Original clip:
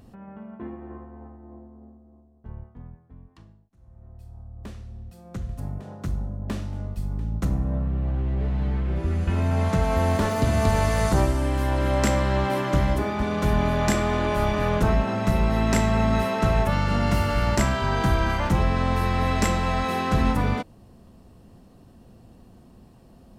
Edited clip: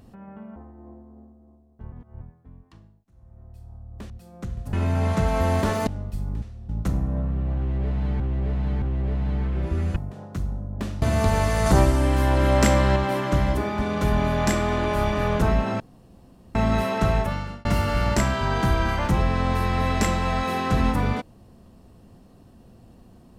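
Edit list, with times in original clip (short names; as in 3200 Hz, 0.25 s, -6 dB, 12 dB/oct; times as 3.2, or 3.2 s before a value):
0.56–1.21 cut
2.57–2.86 reverse
4.75–5.02 move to 7.26
5.65–6.71 swap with 9.29–10.43
8.15–8.77 loop, 3 plays
11.07–12.37 gain +3.5 dB
15.21–15.96 room tone
16.52–17.06 fade out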